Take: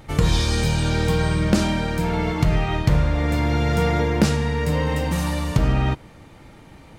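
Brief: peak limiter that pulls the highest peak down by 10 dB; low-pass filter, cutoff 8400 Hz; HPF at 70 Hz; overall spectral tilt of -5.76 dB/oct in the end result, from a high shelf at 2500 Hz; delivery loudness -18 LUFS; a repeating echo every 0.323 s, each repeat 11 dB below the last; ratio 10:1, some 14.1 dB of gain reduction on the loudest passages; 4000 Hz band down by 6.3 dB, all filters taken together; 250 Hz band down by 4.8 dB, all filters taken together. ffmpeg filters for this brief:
-af "highpass=70,lowpass=8.4k,equalizer=f=250:t=o:g=-7.5,highshelf=f=2.5k:g=-4.5,equalizer=f=4k:t=o:g=-4,acompressor=threshold=-30dB:ratio=10,alimiter=level_in=3dB:limit=-24dB:level=0:latency=1,volume=-3dB,aecho=1:1:323|646|969:0.282|0.0789|0.0221,volume=18.5dB"

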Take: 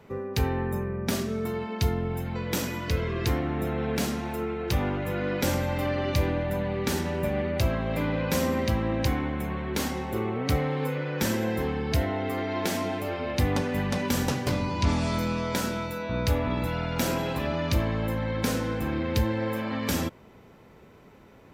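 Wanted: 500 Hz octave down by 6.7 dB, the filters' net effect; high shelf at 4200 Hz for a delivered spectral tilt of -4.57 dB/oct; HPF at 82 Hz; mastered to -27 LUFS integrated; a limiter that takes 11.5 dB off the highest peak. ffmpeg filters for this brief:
-af "highpass=82,equalizer=f=500:t=o:g=-8.5,highshelf=f=4.2k:g=7.5,volume=5dB,alimiter=limit=-17dB:level=0:latency=1"

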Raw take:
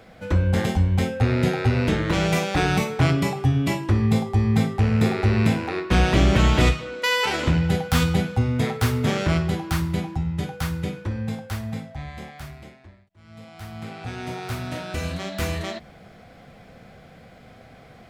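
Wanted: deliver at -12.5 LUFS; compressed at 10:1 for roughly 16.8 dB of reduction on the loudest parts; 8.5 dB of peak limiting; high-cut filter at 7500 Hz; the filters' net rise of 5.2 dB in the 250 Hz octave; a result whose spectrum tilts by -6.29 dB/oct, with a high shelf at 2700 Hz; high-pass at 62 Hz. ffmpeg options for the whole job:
-af "highpass=62,lowpass=7.5k,equalizer=f=250:t=o:g=7,highshelf=f=2.7k:g=-3.5,acompressor=threshold=-29dB:ratio=10,volume=23dB,alimiter=limit=-3dB:level=0:latency=1"

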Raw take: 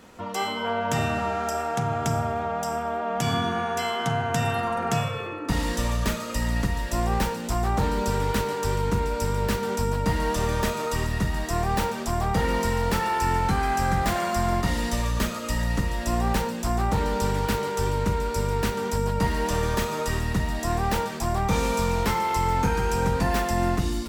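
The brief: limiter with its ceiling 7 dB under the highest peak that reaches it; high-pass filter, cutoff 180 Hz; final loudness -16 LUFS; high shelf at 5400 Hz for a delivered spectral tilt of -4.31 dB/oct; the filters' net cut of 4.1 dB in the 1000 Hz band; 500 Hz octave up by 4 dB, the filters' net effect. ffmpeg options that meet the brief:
-af "highpass=180,equalizer=f=500:t=o:g=7,equalizer=f=1k:t=o:g=-9,highshelf=f=5.4k:g=6,volume=11.5dB,alimiter=limit=-6.5dB:level=0:latency=1"

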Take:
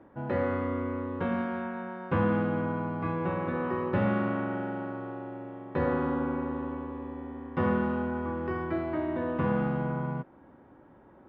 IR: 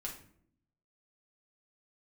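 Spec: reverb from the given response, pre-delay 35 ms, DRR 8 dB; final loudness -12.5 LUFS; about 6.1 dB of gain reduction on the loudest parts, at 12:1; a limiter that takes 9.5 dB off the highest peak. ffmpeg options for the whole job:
-filter_complex "[0:a]acompressor=threshold=-28dB:ratio=12,alimiter=level_in=3.5dB:limit=-24dB:level=0:latency=1,volume=-3.5dB,asplit=2[a][b];[1:a]atrim=start_sample=2205,adelay=35[c];[b][c]afir=irnorm=-1:irlink=0,volume=-7dB[d];[a][d]amix=inputs=2:normalize=0,volume=24dB"

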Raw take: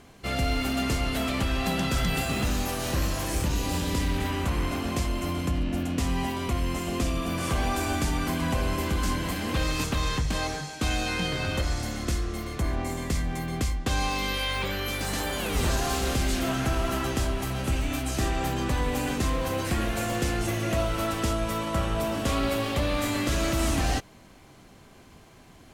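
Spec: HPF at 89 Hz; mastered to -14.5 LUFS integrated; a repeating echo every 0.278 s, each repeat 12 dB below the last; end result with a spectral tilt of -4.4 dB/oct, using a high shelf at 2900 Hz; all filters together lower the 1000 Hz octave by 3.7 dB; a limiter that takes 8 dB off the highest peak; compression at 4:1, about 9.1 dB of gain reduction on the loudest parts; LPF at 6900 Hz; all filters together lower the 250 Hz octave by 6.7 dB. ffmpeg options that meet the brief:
-af "highpass=89,lowpass=6.9k,equalizer=f=250:t=o:g=-8.5,equalizer=f=1k:t=o:g=-4,highshelf=f=2.9k:g=-3,acompressor=threshold=-38dB:ratio=4,alimiter=level_in=8dB:limit=-24dB:level=0:latency=1,volume=-8dB,aecho=1:1:278|556|834:0.251|0.0628|0.0157,volume=26.5dB"

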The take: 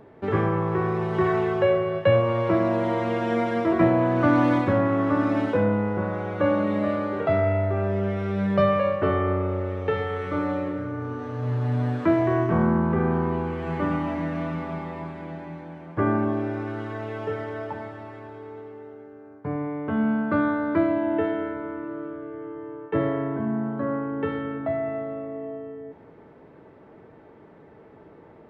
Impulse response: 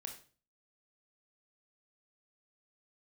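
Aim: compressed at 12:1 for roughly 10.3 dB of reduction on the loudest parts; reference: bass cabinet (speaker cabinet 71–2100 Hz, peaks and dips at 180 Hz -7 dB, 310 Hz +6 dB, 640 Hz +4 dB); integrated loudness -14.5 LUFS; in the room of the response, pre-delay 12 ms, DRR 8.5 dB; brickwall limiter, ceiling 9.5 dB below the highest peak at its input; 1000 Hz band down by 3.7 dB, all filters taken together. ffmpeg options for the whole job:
-filter_complex "[0:a]equalizer=f=1k:t=o:g=-6.5,acompressor=threshold=-26dB:ratio=12,alimiter=level_in=2dB:limit=-24dB:level=0:latency=1,volume=-2dB,asplit=2[a][b];[1:a]atrim=start_sample=2205,adelay=12[c];[b][c]afir=irnorm=-1:irlink=0,volume=-5dB[d];[a][d]amix=inputs=2:normalize=0,highpass=f=71:w=0.5412,highpass=f=71:w=1.3066,equalizer=f=180:t=q:w=4:g=-7,equalizer=f=310:t=q:w=4:g=6,equalizer=f=640:t=q:w=4:g=4,lowpass=f=2.1k:w=0.5412,lowpass=f=2.1k:w=1.3066,volume=18.5dB"

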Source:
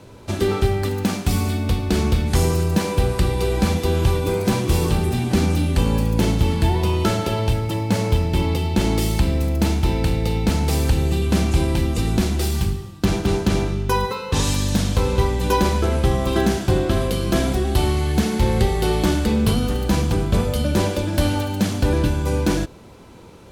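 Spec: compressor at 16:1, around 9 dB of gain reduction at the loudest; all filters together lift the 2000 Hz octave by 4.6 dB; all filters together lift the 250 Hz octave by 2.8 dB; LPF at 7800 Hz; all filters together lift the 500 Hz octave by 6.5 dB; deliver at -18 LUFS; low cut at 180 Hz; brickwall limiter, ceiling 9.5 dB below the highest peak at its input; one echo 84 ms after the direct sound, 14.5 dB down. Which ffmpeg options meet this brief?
-af "highpass=180,lowpass=7.8k,equalizer=f=250:t=o:g=3.5,equalizer=f=500:t=o:g=7,equalizer=f=2k:t=o:g=5.5,acompressor=threshold=-20dB:ratio=16,alimiter=limit=-16.5dB:level=0:latency=1,aecho=1:1:84:0.188,volume=8dB"

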